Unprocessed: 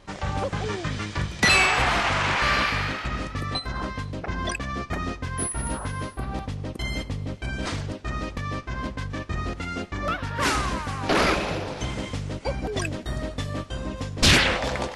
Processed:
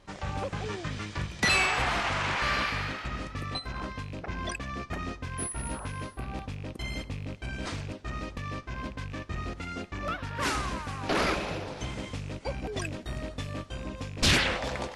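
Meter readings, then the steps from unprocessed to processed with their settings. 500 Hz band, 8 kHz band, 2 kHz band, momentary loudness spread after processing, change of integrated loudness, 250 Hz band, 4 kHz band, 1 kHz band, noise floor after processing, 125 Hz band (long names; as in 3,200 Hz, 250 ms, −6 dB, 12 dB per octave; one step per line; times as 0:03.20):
−6.0 dB, −6.0 dB, −6.0 dB, 13 LU, −6.0 dB, −6.0 dB, −6.0 dB, −6.0 dB, −45 dBFS, −6.0 dB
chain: loose part that buzzes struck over −31 dBFS, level −30 dBFS
level −6 dB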